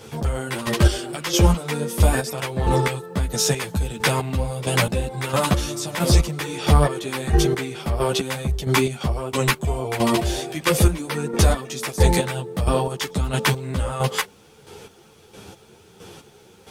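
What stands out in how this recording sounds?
chopped level 1.5 Hz, depth 65%, duty 30%
a quantiser's noise floor 12 bits, dither none
a shimmering, thickened sound

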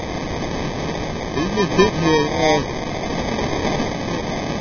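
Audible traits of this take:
a quantiser's noise floor 6 bits, dither triangular
phaser sweep stages 2, 2.5 Hz, lowest notch 480–1,100 Hz
aliases and images of a low sample rate 1,400 Hz, jitter 0%
Ogg Vorbis

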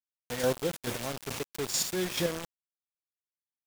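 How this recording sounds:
chopped level 2.3 Hz, depth 60%, duty 20%
a quantiser's noise floor 6 bits, dither none

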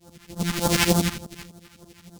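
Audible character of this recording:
a buzz of ramps at a fixed pitch in blocks of 256 samples
phaser sweep stages 2, 3.4 Hz, lowest notch 470–2,200 Hz
tremolo saw up 12 Hz, depth 95%
a shimmering, thickened sound

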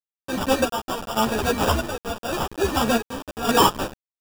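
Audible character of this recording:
aliases and images of a low sample rate 2,100 Hz, jitter 0%
chopped level 0.86 Hz, depth 65%, duty 55%
a quantiser's noise floor 6 bits, dither none
a shimmering, thickened sound

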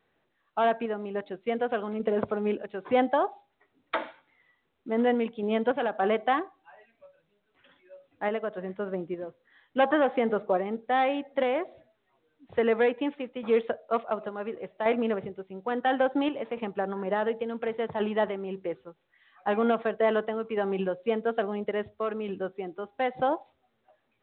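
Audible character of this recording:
sample-and-hold tremolo
mu-law

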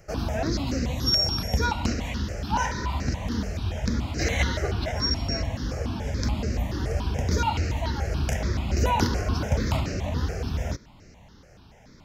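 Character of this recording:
notches that jump at a steady rate 7 Hz 980–3,400 Hz

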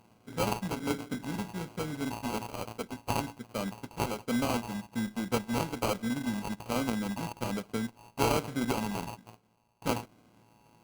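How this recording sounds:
a buzz of ramps at a fixed pitch in blocks of 16 samples
phaser sweep stages 2, 1.2 Hz, lowest notch 630–1,800 Hz
aliases and images of a low sample rate 1,800 Hz, jitter 0%
Opus

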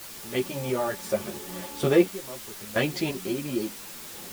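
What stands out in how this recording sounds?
sample-and-hold tremolo 2.9 Hz, depth 90%
a quantiser's noise floor 8 bits, dither triangular
a shimmering, thickened sound

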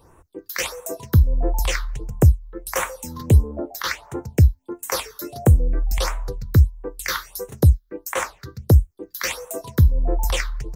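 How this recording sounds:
phaser sweep stages 6, 1.5 Hz, lowest notch 640–4,700 Hz

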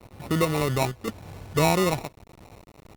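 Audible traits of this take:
a quantiser's noise floor 8 bits, dither none
chopped level 0.93 Hz, depth 60%, duty 85%
aliases and images of a low sample rate 1,600 Hz, jitter 0%
Opus

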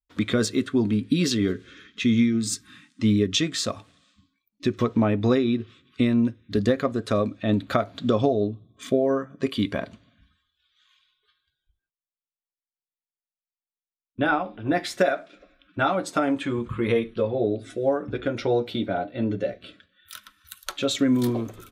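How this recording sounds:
background noise floor −96 dBFS
spectral slope −5.5 dB per octave

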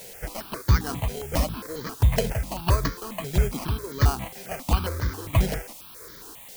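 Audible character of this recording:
aliases and images of a low sample rate 3,600 Hz, jitter 0%
chopped level 1.5 Hz, depth 60%, duty 50%
a quantiser's noise floor 8 bits, dither triangular
notches that jump at a steady rate 7.4 Hz 310–2,700 Hz

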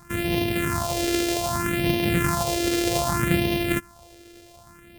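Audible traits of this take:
a buzz of ramps at a fixed pitch in blocks of 128 samples
phaser sweep stages 4, 0.64 Hz, lowest notch 160–1,300 Hz

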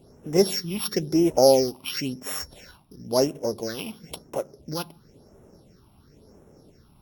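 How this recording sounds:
a buzz of ramps at a fixed pitch in blocks of 8 samples
phaser sweep stages 6, 0.97 Hz, lowest notch 460–4,600 Hz
Opus

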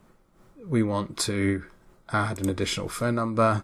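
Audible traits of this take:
a quantiser's noise floor 12 bits, dither none
amplitude modulation by smooth noise

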